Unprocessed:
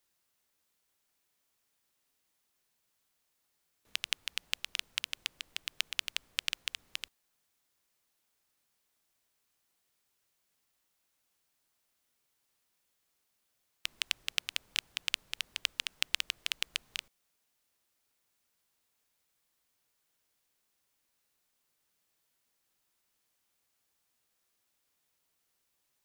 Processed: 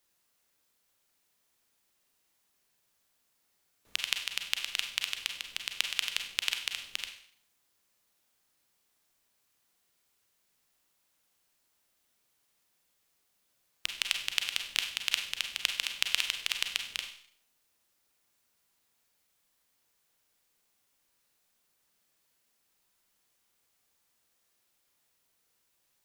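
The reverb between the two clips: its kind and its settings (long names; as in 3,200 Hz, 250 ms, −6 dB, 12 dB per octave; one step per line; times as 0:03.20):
four-comb reverb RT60 0.58 s, combs from 32 ms, DRR 4.5 dB
level +2.5 dB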